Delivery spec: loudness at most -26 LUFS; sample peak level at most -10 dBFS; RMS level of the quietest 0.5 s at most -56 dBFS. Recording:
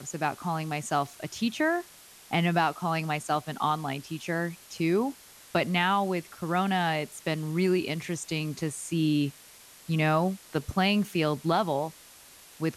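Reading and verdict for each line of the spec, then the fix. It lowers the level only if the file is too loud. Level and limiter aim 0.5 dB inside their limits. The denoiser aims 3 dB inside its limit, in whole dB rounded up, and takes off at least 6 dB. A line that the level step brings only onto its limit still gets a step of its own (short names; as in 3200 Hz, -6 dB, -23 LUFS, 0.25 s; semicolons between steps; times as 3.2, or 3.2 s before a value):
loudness -28.5 LUFS: OK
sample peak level -13.0 dBFS: OK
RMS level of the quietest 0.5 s -52 dBFS: fail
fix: denoiser 7 dB, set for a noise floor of -52 dBFS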